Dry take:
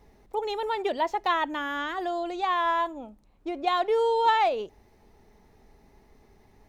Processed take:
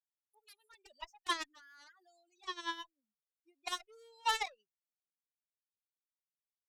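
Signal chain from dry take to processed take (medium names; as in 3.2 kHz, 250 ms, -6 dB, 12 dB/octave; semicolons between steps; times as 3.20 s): expander on every frequency bin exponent 3; Bessel high-pass 1.6 kHz, order 2; Chebyshev shaper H 6 -37 dB, 7 -15 dB, 8 -38 dB, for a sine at -20.5 dBFS; trim +1 dB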